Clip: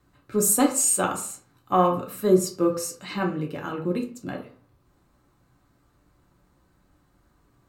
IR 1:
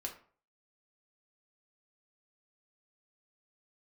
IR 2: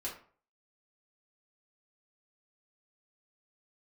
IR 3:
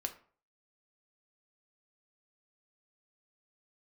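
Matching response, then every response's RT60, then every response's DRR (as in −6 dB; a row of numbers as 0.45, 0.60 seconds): 1; 0.45, 0.45, 0.45 seconds; 0.5, −5.5, 5.0 decibels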